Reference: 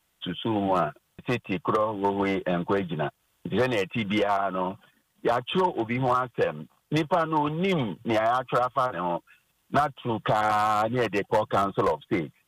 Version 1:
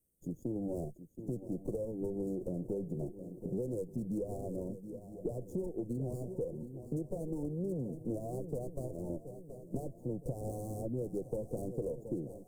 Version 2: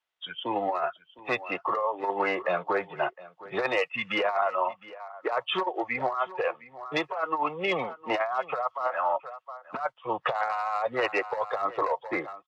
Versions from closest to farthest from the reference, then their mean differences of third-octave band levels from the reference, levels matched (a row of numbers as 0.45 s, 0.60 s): 2, 1; 8.5 dB, 14.0 dB